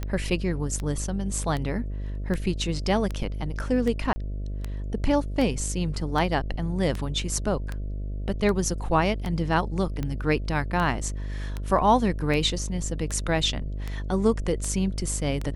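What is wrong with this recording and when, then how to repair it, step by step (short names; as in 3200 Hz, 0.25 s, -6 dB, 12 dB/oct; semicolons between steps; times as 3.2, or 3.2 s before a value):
buzz 50 Hz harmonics 13 -31 dBFS
tick 78 rpm -17 dBFS
4.13–4.16 gap 30 ms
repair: de-click; de-hum 50 Hz, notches 13; interpolate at 4.13, 30 ms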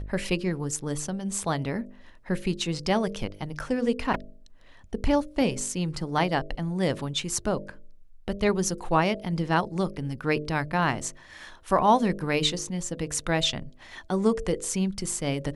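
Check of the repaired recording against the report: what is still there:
none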